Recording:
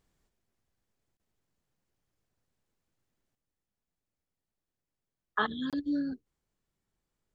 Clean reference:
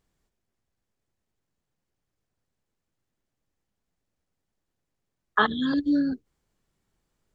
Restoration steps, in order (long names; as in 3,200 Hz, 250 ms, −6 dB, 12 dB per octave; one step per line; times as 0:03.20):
repair the gap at 0:01.17/0:05.70, 27 ms
level 0 dB, from 0:03.35 +8 dB